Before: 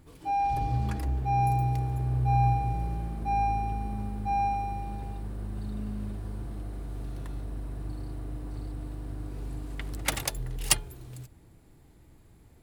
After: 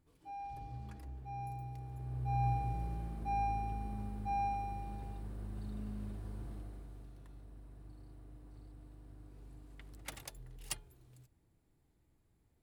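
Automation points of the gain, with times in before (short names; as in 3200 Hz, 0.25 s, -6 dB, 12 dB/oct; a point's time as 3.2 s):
1.73 s -18 dB
2.56 s -8 dB
6.52 s -8 dB
7.16 s -17.5 dB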